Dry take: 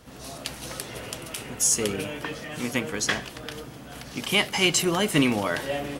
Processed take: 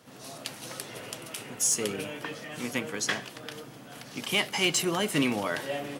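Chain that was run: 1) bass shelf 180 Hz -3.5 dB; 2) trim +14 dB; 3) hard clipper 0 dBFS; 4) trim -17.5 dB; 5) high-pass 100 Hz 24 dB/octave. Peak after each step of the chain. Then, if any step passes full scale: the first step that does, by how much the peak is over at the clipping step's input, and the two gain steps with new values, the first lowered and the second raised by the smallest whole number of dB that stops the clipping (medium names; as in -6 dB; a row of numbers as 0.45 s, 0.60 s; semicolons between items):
-7.0 dBFS, +7.0 dBFS, 0.0 dBFS, -17.5 dBFS, -14.0 dBFS; step 2, 7.0 dB; step 2 +7 dB, step 4 -10.5 dB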